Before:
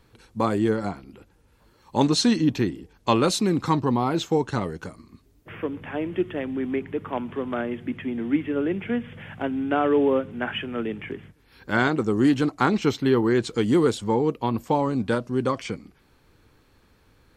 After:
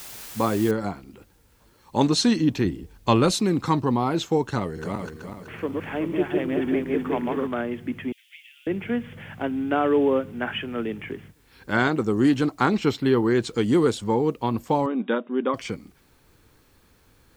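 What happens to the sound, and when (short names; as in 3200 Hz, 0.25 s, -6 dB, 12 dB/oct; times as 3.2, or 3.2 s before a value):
0.71 noise floor step -40 dB -67 dB
2.65–3.35 low shelf 120 Hz +11 dB
4.58–7.47 regenerating reverse delay 0.189 s, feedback 61%, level -1.5 dB
8.12–8.67 steep high-pass 2500 Hz
12.79–13.29 notch 6200 Hz, Q 9.5
14.86–15.54 brick-wall FIR band-pass 190–3800 Hz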